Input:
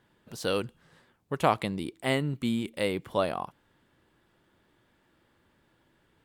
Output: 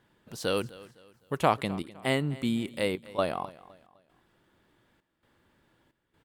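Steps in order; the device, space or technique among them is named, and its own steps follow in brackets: 0.57–1.38 high shelf 6700 Hz +10 dB; trance gate with a delay (step gate "xxxx.xxx." 66 bpm -12 dB; feedback echo 0.255 s, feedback 36%, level -19.5 dB)

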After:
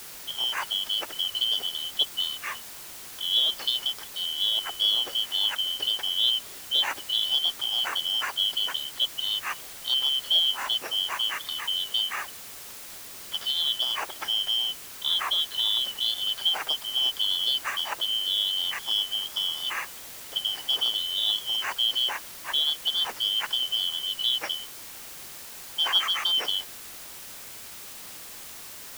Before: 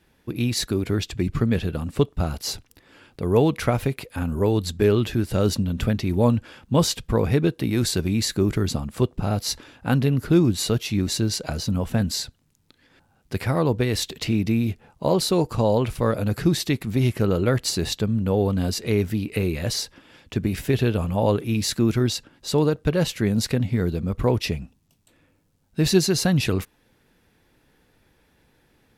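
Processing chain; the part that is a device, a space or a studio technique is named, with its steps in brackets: split-band scrambled radio (four-band scrambler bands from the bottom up 3412; BPF 310–3100 Hz; white noise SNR 13 dB); gain -2.5 dB

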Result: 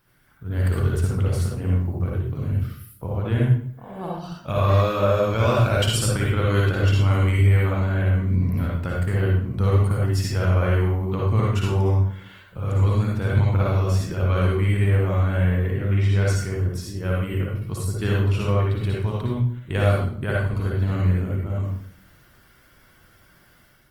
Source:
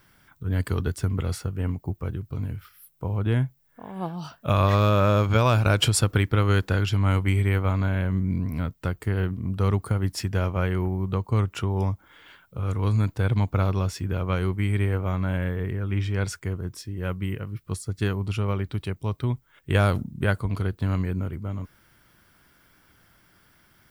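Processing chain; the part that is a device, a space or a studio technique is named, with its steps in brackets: speakerphone in a meeting room (reverb RT60 0.55 s, pre-delay 52 ms, DRR -3.5 dB; AGC gain up to 5.5 dB; gain -6 dB; Opus 24 kbps 48000 Hz)

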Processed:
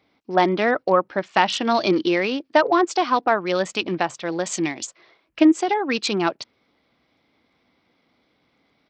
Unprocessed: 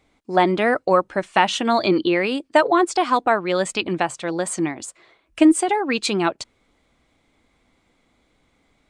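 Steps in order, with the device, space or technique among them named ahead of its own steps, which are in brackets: 4.44–4.87 resonant high shelf 2000 Hz +6.5 dB, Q 1.5; Bluetooth headset (HPF 120 Hz 12 dB/oct; downsampling 16000 Hz; gain -1 dB; SBC 64 kbps 44100 Hz)

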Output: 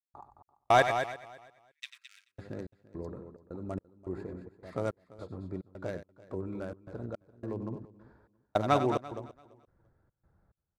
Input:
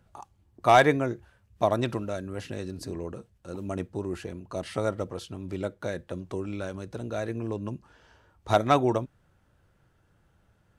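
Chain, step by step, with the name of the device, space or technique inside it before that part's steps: Wiener smoothing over 15 samples; 0.82–2.29 steep high-pass 2000 Hz 36 dB/oct; loudspeakers at several distances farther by 32 m -11 dB, 74 m -9 dB; trance gate with a delay (step gate ".xx..xxx" 107 bpm -60 dB; feedback echo 0.339 s, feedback 18%, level -19.5 dB); gain -4.5 dB

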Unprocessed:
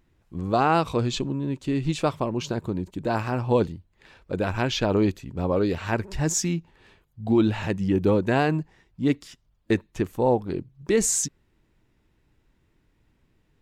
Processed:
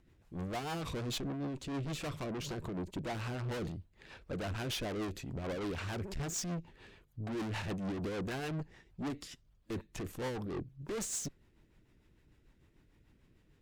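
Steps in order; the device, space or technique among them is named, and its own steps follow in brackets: overdriven rotary cabinet (tube stage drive 37 dB, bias 0.4; rotary speaker horn 6.7 Hz); gain +2.5 dB

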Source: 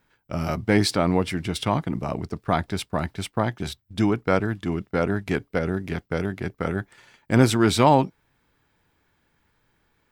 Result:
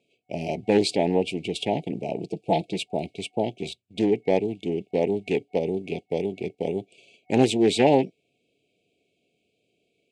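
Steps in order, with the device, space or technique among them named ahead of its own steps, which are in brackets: 2.19–2.84 comb 6.1 ms, depth 67%; FFT band-reject 740–2200 Hz; full-range speaker at full volume (Doppler distortion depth 0.4 ms; speaker cabinet 200–8900 Hz, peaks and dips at 420 Hz +6 dB, 840 Hz +9 dB, 1300 Hz -6 dB, 2700 Hz +6 dB, 5500 Hz -7 dB); gain -1 dB

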